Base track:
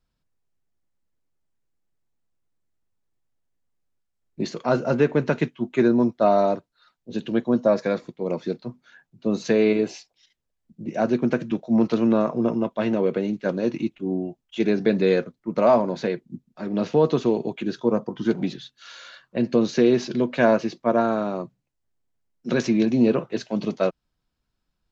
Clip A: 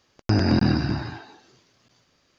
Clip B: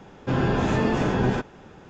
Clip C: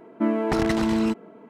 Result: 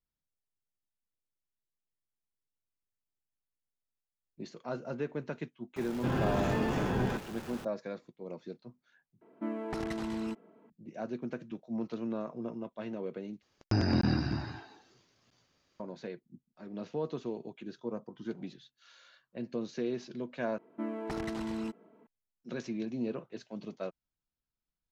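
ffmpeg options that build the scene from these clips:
ffmpeg -i bed.wav -i cue0.wav -i cue1.wav -i cue2.wav -filter_complex "[3:a]asplit=2[link_01][link_02];[0:a]volume=-16.5dB[link_03];[2:a]aeval=exprs='val(0)+0.5*0.0224*sgn(val(0))':channel_layout=same[link_04];[link_03]asplit=4[link_05][link_06][link_07][link_08];[link_05]atrim=end=9.214[link_09];[link_01]atrim=end=1.49,asetpts=PTS-STARTPTS,volume=-13.5dB[link_10];[link_06]atrim=start=10.696:end=13.424[link_11];[1:a]atrim=end=2.38,asetpts=PTS-STARTPTS,volume=-8dB[link_12];[link_07]atrim=start=15.796:end=20.584[link_13];[link_02]atrim=end=1.49,asetpts=PTS-STARTPTS,volume=-14dB[link_14];[link_08]atrim=start=22.066[link_15];[link_04]atrim=end=1.89,asetpts=PTS-STARTPTS,volume=-9dB,afade=type=in:duration=0.004:curve=hsin,afade=type=out:start_time=1.886:duration=0.004:curve=hsin,adelay=5760[link_16];[link_09][link_10]acrossfade=duration=0.004:curve1=hsin:curve2=hsin[link_17];[link_17][link_11]acrossfade=duration=0.004:curve1=hsin:curve2=hsin[link_18];[link_18][link_12]acrossfade=duration=0.004:curve1=hsin:curve2=hsin[link_19];[link_19][link_13]acrossfade=duration=0.004:curve1=hsin:curve2=hsin[link_20];[link_20][link_14]acrossfade=duration=0.004:curve1=hsin:curve2=hsin[link_21];[link_21][link_15]acrossfade=duration=0.004:curve1=hsin:curve2=hsin[link_22];[link_22][link_16]amix=inputs=2:normalize=0" out.wav

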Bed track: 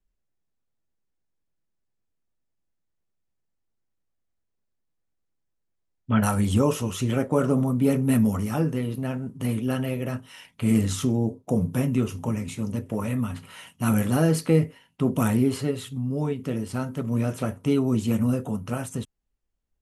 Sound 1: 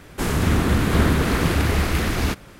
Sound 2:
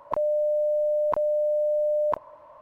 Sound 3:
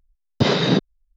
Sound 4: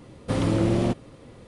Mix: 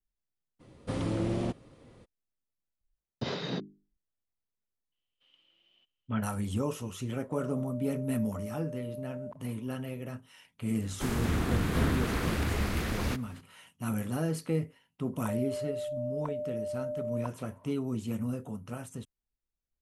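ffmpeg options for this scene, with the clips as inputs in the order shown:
ffmpeg -i bed.wav -i cue0.wav -i cue1.wav -i cue2.wav -i cue3.wav -filter_complex "[4:a]asplit=2[link_01][link_02];[2:a]asplit=2[link_03][link_04];[0:a]volume=-10.5dB[link_05];[3:a]bandreject=frequency=50:width_type=h:width=6,bandreject=frequency=100:width_type=h:width=6,bandreject=frequency=150:width_type=h:width=6,bandreject=frequency=200:width_type=h:width=6,bandreject=frequency=250:width_type=h:width=6,bandreject=frequency=300:width_type=h:width=6,bandreject=frequency=350:width_type=h:width=6,bandreject=frequency=400:width_type=h:width=6[link_06];[link_02]bandpass=frequency=3000:width_type=q:width=19:csg=0[link_07];[link_03]alimiter=limit=-24dB:level=0:latency=1:release=71[link_08];[link_01]atrim=end=1.47,asetpts=PTS-STARTPTS,volume=-8.5dB,afade=type=in:duration=0.02,afade=type=out:start_time=1.45:duration=0.02,adelay=590[link_09];[link_06]atrim=end=1.16,asetpts=PTS-STARTPTS,volume=-16dB,afade=type=in:duration=0.004:curve=hsin,afade=type=out:start_time=1.156:duration=0.004:curve=hsin,adelay=2810[link_10];[link_07]atrim=end=1.47,asetpts=PTS-STARTPTS,volume=-15.5dB,afade=type=in:duration=0.004:curve=hsin,afade=type=out:start_time=1.466:duration=0.004:curve=hsin,adelay=4920[link_11];[link_08]atrim=end=2.61,asetpts=PTS-STARTPTS,volume=-15.5dB,afade=type=in:duration=0.004:curve=hsin,afade=type=out:start_time=2.606:duration=0.004:curve=hsin,adelay=7190[link_12];[1:a]atrim=end=2.59,asetpts=PTS-STARTPTS,volume=-10.5dB,afade=type=in:duration=0.004:curve=hsin,afade=type=out:start_time=2.586:duration=0.004:curve=hsin,adelay=477162S[link_13];[link_04]atrim=end=2.61,asetpts=PTS-STARTPTS,volume=-12dB,afade=type=in:duration=0.02,afade=type=out:start_time=2.59:duration=0.02,adelay=15120[link_14];[link_05][link_09][link_10][link_11][link_12][link_13][link_14]amix=inputs=7:normalize=0" out.wav

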